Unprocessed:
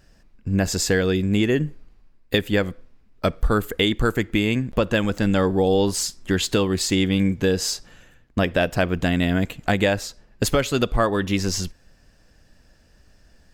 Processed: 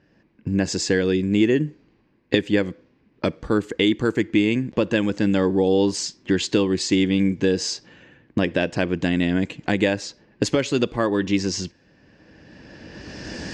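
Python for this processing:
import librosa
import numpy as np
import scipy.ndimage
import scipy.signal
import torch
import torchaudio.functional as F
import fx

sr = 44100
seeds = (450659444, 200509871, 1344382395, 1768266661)

y = fx.recorder_agc(x, sr, target_db=-15.0, rise_db_per_s=16.0, max_gain_db=30)
y = fx.env_lowpass(y, sr, base_hz=2600.0, full_db=-17.0)
y = fx.cabinet(y, sr, low_hz=130.0, low_slope=12, high_hz=7000.0, hz=(320.0, 690.0, 1300.0, 3600.0), db=(6, -6, -8, -3))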